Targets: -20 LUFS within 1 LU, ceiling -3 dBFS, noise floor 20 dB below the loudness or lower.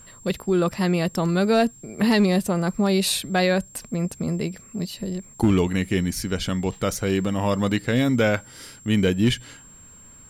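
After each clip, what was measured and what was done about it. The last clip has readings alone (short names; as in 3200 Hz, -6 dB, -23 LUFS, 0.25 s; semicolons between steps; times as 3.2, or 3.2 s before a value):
clipped 0.3%; flat tops at -11.5 dBFS; steady tone 7500 Hz; tone level -46 dBFS; loudness -23.0 LUFS; peak -11.5 dBFS; loudness target -20.0 LUFS
-> clip repair -11.5 dBFS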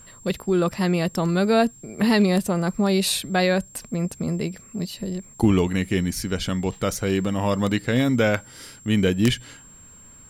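clipped 0.0%; steady tone 7500 Hz; tone level -46 dBFS
-> notch 7500 Hz, Q 30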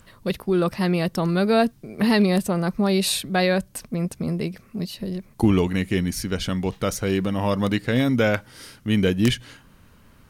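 steady tone none; loudness -23.0 LUFS; peak -3.0 dBFS; loudness target -20.0 LUFS
-> gain +3 dB; limiter -3 dBFS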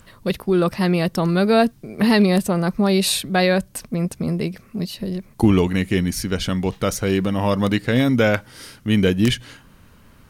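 loudness -20.0 LUFS; peak -3.0 dBFS; noise floor -50 dBFS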